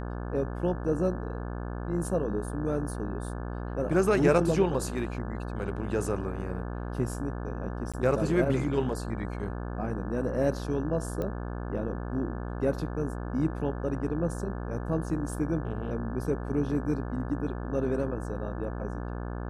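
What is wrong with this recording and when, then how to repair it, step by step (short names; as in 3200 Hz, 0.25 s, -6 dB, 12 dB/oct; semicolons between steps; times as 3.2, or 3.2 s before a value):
buzz 60 Hz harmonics 29 -35 dBFS
7.92–7.94 gap 16 ms
11.22 pop -21 dBFS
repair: de-click; de-hum 60 Hz, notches 29; interpolate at 7.92, 16 ms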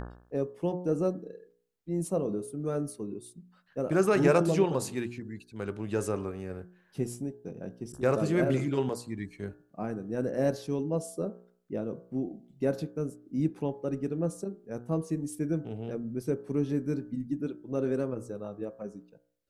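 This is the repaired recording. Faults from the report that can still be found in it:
none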